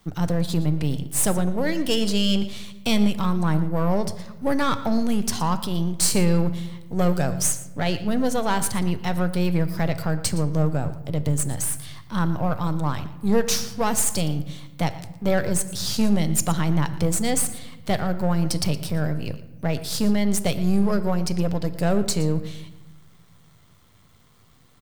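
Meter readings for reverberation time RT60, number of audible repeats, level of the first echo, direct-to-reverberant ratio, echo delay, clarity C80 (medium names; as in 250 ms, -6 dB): 1.2 s, 1, -16.5 dB, 10.5 dB, 116 ms, 13.5 dB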